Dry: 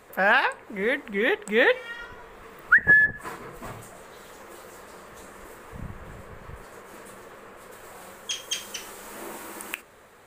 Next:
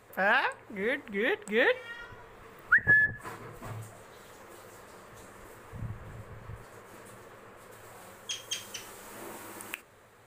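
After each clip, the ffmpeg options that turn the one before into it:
-af "equalizer=f=110:w=3.6:g=11,volume=0.531"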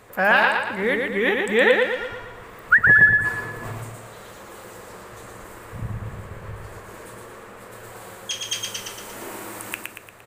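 -af "aecho=1:1:116|232|348|464|580|696:0.668|0.327|0.16|0.0786|0.0385|0.0189,volume=2.37"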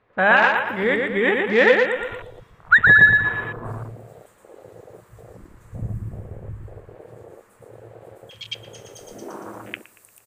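-filter_complex "[0:a]acrossover=split=4000[s0][s1];[s1]adelay=440[s2];[s0][s2]amix=inputs=2:normalize=0,afwtdn=0.0251,volume=1.26"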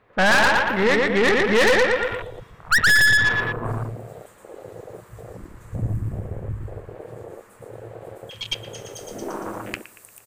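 -af "aeval=exprs='(tanh(11.2*val(0)+0.5)-tanh(0.5))/11.2':c=same,volume=2.24"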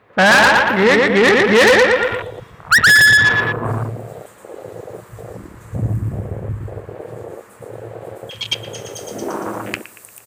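-af "highpass=73,volume=2.11"

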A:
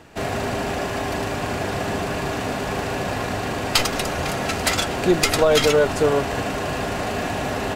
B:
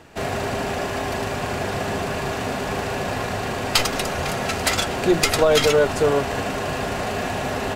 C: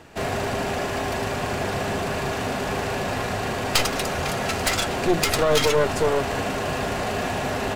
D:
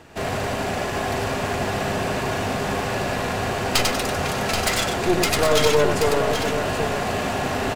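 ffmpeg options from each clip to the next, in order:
-af "bandreject=f=60:t=h:w=6,bandreject=f=120:t=h:w=6,bandreject=f=180:t=h:w=6,bandreject=f=240:t=h:w=6,bandreject=f=300:t=h:w=6"
-af "aeval=exprs='clip(val(0),-1,0.075)':c=same"
-af "aecho=1:1:94|780:0.531|0.447"

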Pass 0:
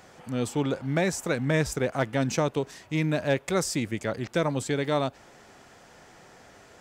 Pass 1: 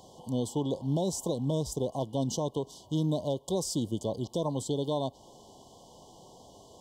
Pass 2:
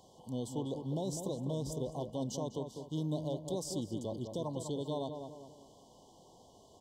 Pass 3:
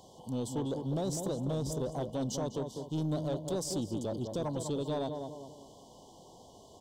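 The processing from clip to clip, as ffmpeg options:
-af "afftfilt=real='re*(1-between(b*sr/4096,1100,2900))':imag='im*(1-between(b*sr/4096,1100,2900))':win_size=4096:overlap=0.75,alimiter=limit=0.106:level=0:latency=1:release=327"
-filter_complex "[0:a]asplit=2[s0][s1];[s1]adelay=200,lowpass=f=1900:p=1,volume=0.473,asplit=2[s2][s3];[s3]adelay=200,lowpass=f=1900:p=1,volume=0.44,asplit=2[s4][s5];[s5]adelay=200,lowpass=f=1900:p=1,volume=0.44,asplit=2[s6][s7];[s7]adelay=200,lowpass=f=1900:p=1,volume=0.44,asplit=2[s8][s9];[s9]adelay=200,lowpass=f=1900:p=1,volume=0.44[s10];[s0][s2][s4][s6][s8][s10]amix=inputs=6:normalize=0,volume=0.422"
-af "asoftclip=type=tanh:threshold=0.0282,volume=1.78"

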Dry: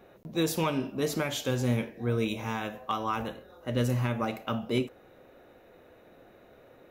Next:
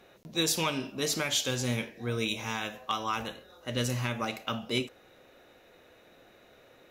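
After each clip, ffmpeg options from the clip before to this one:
-af "equalizer=f=5400:w=0.36:g=13,volume=0.596"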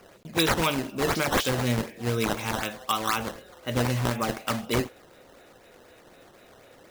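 -af "acrusher=samples=11:mix=1:aa=0.000001:lfo=1:lforange=17.6:lforate=4,volume=1.78"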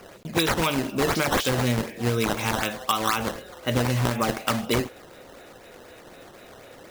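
-af "acompressor=threshold=0.0501:ratio=5,volume=2.11"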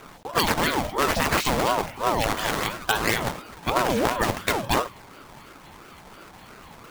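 -af "aeval=exprs='val(0)*sin(2*PI*600*n/s+600*0.45/2.9*sin(2*PI*2.9*n/s))':c=same,volume=1.5"

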